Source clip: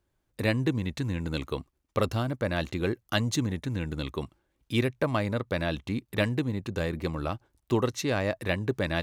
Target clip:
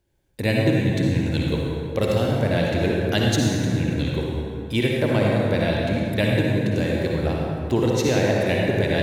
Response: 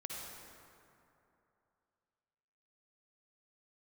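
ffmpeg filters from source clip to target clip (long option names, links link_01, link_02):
-filter_complex "[0:a]equalizer=frequency=1200:width_type=o:width=0.36:gain=-13.5[link_01];[1:a]atrim=start_sample=2205[link_02];[link_01][link_02]afir=irnorm=-1:irlink=0,volume=9dB"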